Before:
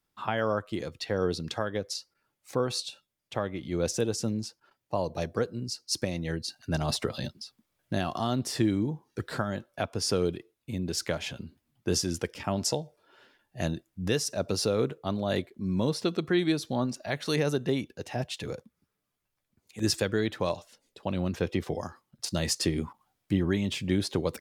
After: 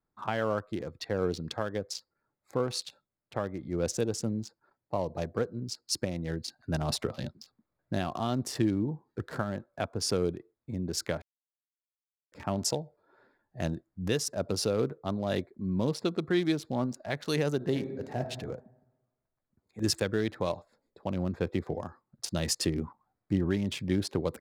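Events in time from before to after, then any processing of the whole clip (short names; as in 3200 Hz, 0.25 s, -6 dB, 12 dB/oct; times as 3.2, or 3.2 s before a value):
11.22–12.32 mute
17.56–18.23 reverb throw, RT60 1.1 s, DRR 5 dB
whole clip: Wiener smoothing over 15 samples; high shelf 9300 Hz +3.5 dB; gain -1.5 dB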